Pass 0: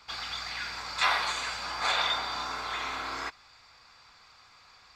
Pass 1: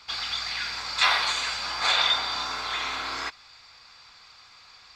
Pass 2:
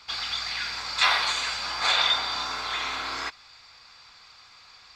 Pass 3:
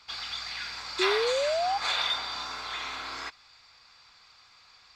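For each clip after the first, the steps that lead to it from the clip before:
peaking EQ 4 kHz +6.5 dB 1.9 oct; trim +1 dB
no audible change
in parallel at -11.5 dB: saturation -20 dBFS, distortion -13 dB; on the sum: painted sound rise, 0.99–1.78 s, 360–820 Hz -20 dBFS; trim -7.5 dB

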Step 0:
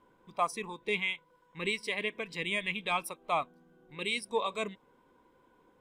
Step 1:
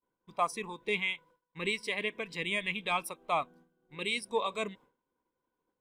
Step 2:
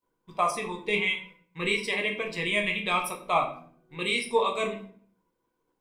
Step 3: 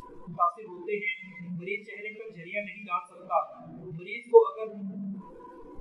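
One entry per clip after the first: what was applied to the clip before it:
expander -52 dBFS
simulated room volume 58 m³, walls mixed, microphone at 0.59 m; trim +3.5 dB
one-bit delta coder 64 kbps, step -24 dBFS; spectral contrast expander 2.5:1; trim +5.5 dB

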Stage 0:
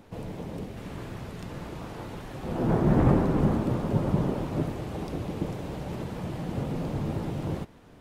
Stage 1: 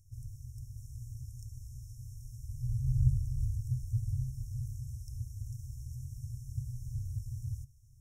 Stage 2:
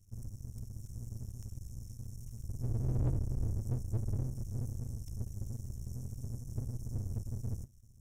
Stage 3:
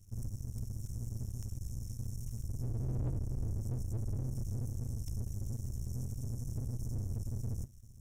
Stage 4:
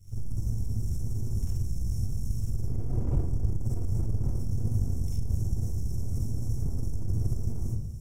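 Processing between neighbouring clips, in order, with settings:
FFT band-reject 130–5300 Hz; trim -1.5 dB
partial rectifier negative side -12 dB; dynamic bell 500 Hz, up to +5 dB, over -55 dBFS, Q 0.71; saturation -28.5 dBFS, distortion -9 dB; trim +4 dB
peak limiter -34 dBFS, peak gain reduction 9.5 dB; trim +5 dB
reverberation RT60 0.70 s, pre-delay 44 ms, DRR -9 dB; transformer saturation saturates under 47 Hz; trim -4 dB

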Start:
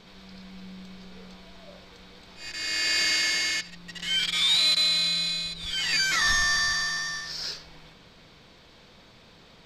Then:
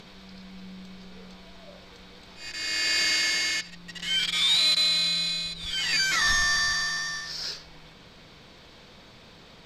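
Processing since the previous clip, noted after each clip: upward compressor, threshold -44 dBFS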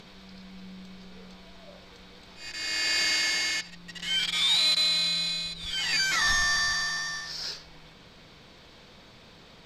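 dynamic bell 840 Hz, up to +6 dB, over -55 dBFS, Q 3.9; trim -1.5 dB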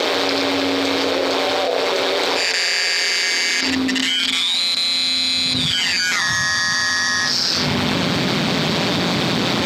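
ring modulator 88 Hz; high-pass sweep 460 Hz -> 170 Hz, 2.75–4.78 s; level flattener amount 100%; trim +5.5 dB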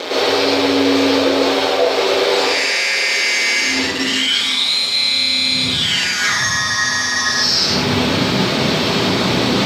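plate-style reverb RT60 0.67 s, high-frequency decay 0.85×, pre-delay 95 ms, DRR -9 dB; trim -6.5 dB

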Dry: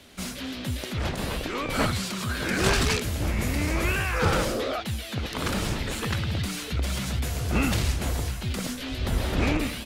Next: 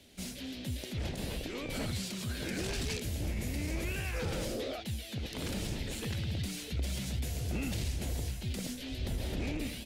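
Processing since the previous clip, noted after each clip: peaking EQ 1.2 kHz -12.5 dB 1 oct; peak limiter -20 dBFS, peak gain reduction 10 dB; trim -6.5 dB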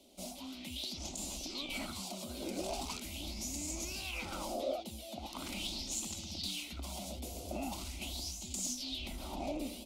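bass shelf 230 Hz -5.5 dB; static phaser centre 460 Hz, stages 6; sweeping bell 0.41 Hz 460–7200 Hz +16 dB; trim -2 dB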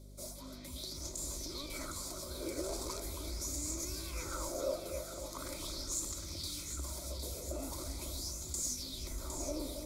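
static phaser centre 770 Hz, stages 6; hum 50 Hz, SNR 11 dB; two-band feedback delay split 1.4 kHz, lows 274 ms, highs 759 ms, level -7 dB; trim +3 dB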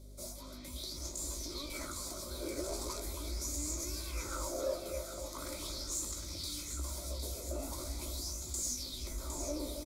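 saturation -24.5 dBFS, distortion -30 dB; doubling 17 ms -7 dB

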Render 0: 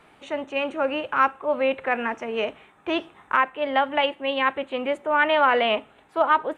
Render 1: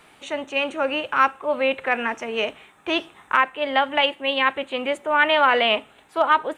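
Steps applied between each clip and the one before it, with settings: treble shelf 2.9 kHz +11.5 dB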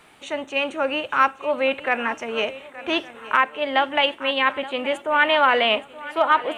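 shuffle delay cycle 1163 ms, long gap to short 3:1, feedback 31%, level -17 dB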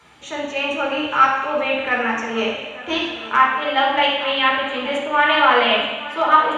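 reverberation RT60 1.0 s, pre-delay 3 ms, DRR -3.5 dB; trim -7 dB

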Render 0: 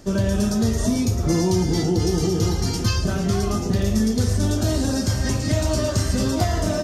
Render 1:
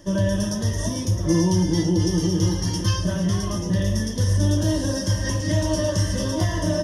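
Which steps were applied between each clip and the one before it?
rippled EQ curve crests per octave 1.2, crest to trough 14 dB; trim -4 dB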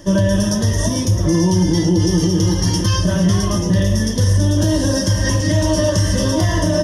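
peak limiter -15 dBFS, peak gain reduction 6 dB; trim +8 dB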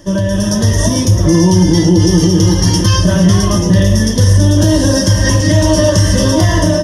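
level rider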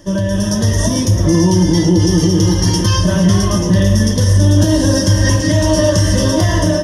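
reverberation RT60 4.4 s, pre-delay 51 ms, DRR 13 dB; trim -2.5 dB

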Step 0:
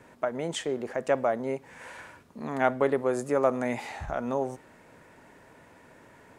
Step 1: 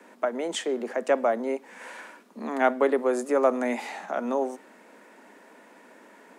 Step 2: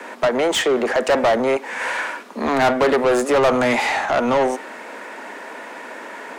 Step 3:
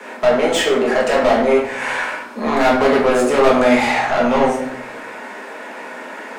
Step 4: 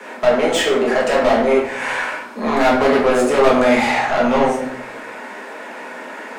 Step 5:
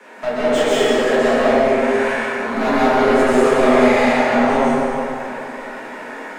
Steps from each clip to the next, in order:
steep high-pass 190 Hz 96 dB/octave; trim +2.5 dB
overdrive pedal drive 27 dB, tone 3.9 kHz, clips at -8.5 dBFS
simulated room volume 140 m³, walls mixed, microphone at 1.4 m; trim -3 dB
flange 0.88 Hz, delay 5 ms, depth 8.7 ms, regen -74%; trim +4 dB
plate-style reverb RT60 2.9 s, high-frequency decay 0.6×, pre-delay 110 ms, DRR -8 dB; trim -8.5 dB

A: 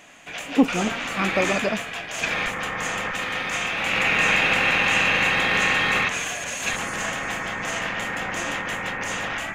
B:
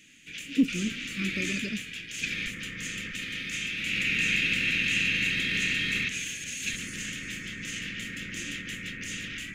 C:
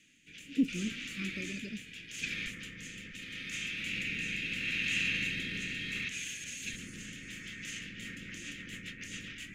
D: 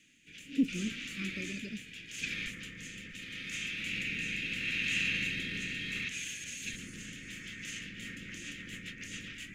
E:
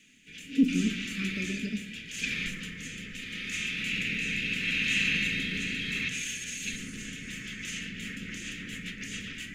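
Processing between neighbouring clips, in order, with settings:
Chebyshev band-stop 270–2500 Hz, order 2; trim -4 dB
rotary cabinet horn 0.75 Hz, later 7.5 Hz, at 7.64 s; trim -5 dB
pre-echo 55 ms -19.5 dB
simulated room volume 3200 m³, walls furnished, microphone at 1.5 m; trim +4 dB

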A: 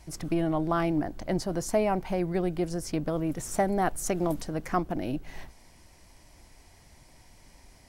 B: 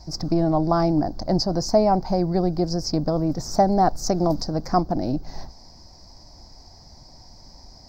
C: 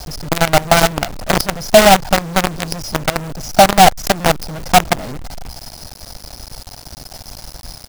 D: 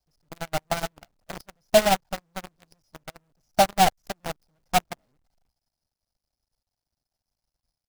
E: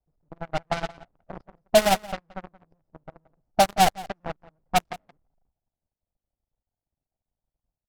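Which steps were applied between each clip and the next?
FFT filter 230 Hz 0 dB, 430 Hz -4 dB, 770 Hz +2 dB, 3 kHz -21 dB, 4.9 kHz +11 dB, 9.8 kHz -27 dB, 15 kHz -8 dB; trim +8 dB
comb 1.4 ms, depth 81%; companded quantiser 2-bit; trim -1 dB
upward expansion 2.5:1, over -32 dBFS; trim -8 dB
level-controlled noise filter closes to 780 Hz, open at -17 dBFS; echo from a far wall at 30 m, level -19 dB

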